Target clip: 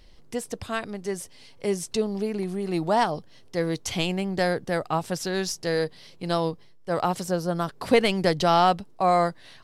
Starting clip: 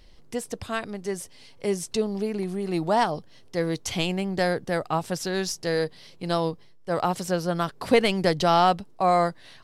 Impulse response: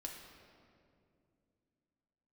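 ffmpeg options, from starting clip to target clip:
-filter_complex "[0:a]asettb=1/sr,asplit=3[s0][s1][s2];[s0]atrim=end=7.244[s3];[s1]atrim=start=7.24:end=7.69,asetpts=PTS-STARTPTS,afade=t=in:d=0.004:c=qsin,afade=t=out:st=0.446:d=0.004:c=qsin,equalizer=f=2500:w=0.94:g=-7[s4];[s2]atrim=start=7.686[s5];[s3][s4]acrossfade=d=0.004:c1=hsin:c2=qsin[s6];[s6][s5]acrossfade=d=0.004:c1=qsin:c2=hsin"

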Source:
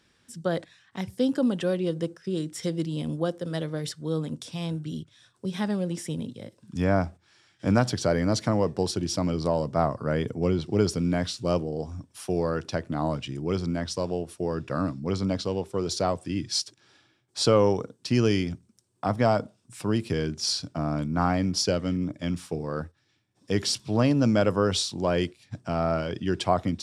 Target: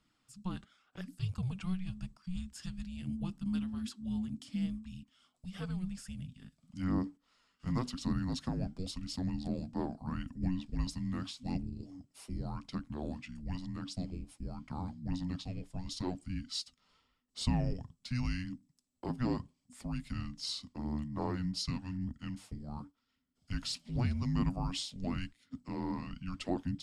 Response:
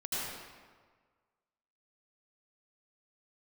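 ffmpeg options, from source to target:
-filter_complex "[0:a]asplit=3[s0][s1][s2];[s0]afade=t=out:st=3.05:d=0.02[s3];[s1]asubboost=boost=10:cutoff=120,afade=t=in:st=3.05:d=0.02,afade=t=out:st=4.65:d=0.02[s4];[s2]afade=t=in:st=4.65:d=0.02[s5];[s3][s4][s5]amix=inputs=3:normalize=0,flanger=delay=0.1:depth=5.1:regen=66:speed=0.86:shape=sinusoidal,afreqshift=-370,volume=0.447"

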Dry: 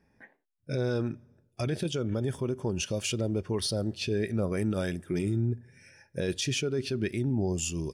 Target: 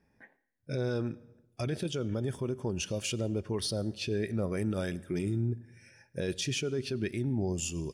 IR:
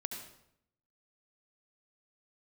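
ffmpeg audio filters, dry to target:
-filter_complex "[0:a]asplit=2[s0][s1];[1:a]atrim=start_sample=2205,asetrate=34839,aresample=44100[s2];[s1][s2]afir=irnorm=-1:irlink=0,volume=0.112[s3];[s0][s3]amix=inputs=2:normalize=0,volume=0.668"

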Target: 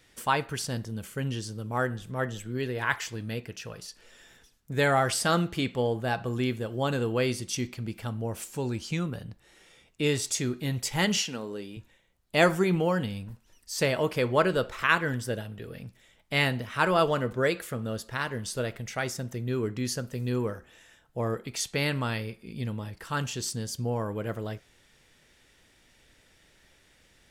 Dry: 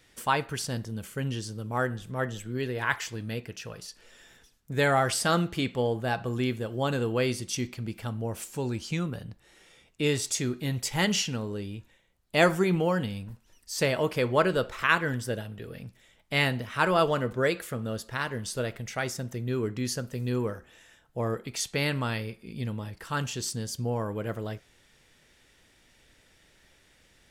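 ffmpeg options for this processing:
-filter_complex "[0:a]asettb=1/sr,asplit=3[s0][s1][s2];[s0]atrim=end=11.174[s3];[s1]atrim=start=11.17:end=11.77,asetpts=PTS-STARTPTS,afade=t=in:d=0.004:c=qsin,afade=t=out:st=0.596:d=0.004:c=qsin,highpass=240[s4];[s2]atrim=start=11.766[s5];[s3][s4]acrossfade=d=0.004:c1=hsin:c2=qsin[s6];[s6][s5]acrossfade=d=0.004:c1=qsin:c2=hsin"

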